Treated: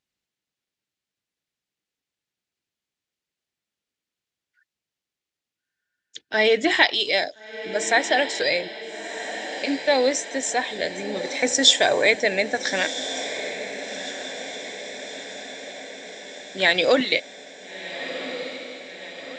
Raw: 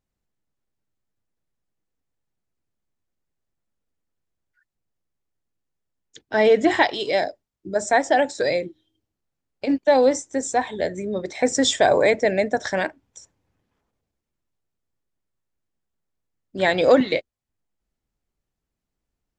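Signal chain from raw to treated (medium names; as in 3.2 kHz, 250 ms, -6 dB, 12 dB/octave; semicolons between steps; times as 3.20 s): frequency weighting D; on a send: echo that smears into a reverb 1380 ms, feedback 62%, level -11 dB; on the sum: trim -3.5 dB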